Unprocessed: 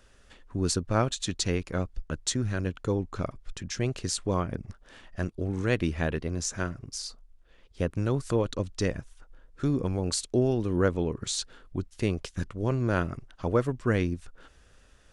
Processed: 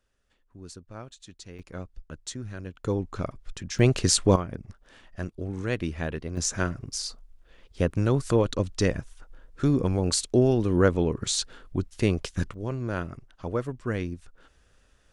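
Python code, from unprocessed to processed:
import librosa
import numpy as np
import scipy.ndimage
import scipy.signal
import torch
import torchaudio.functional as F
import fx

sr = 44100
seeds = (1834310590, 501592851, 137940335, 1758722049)

y = fx.gain(x, sr, db=fx.steps((0.0, -16.5), (1.59, -8.0), (2.84, 0.5), (3.79, 9.0), (4.36, -2.5), (6.37, 4.0), (12.54, -4.0)))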